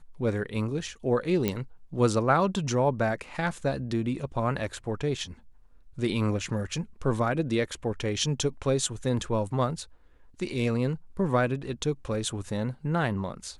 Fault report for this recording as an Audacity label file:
1.480000	1.480000	pop -12 dBFS

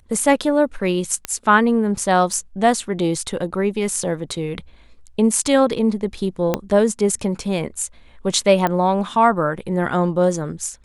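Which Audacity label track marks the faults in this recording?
1.250000	1.250000	pop -8 dBFS
2.330000	2.330000	dropout 3 ms
6.540000	6.540000	pop -5 dBFS
8.670000	8.670000	pop -8 dBFS

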